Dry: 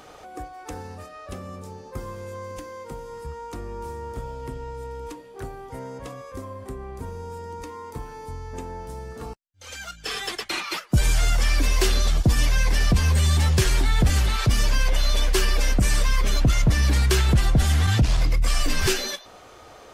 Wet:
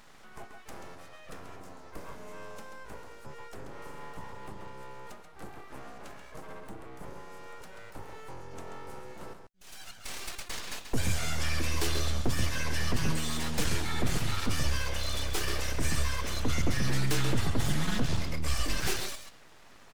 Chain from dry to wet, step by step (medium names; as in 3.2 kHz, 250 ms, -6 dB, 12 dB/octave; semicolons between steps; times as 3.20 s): echo from a far wall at 23 m, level -7 dB; full-wave rectifier; trim -7 dB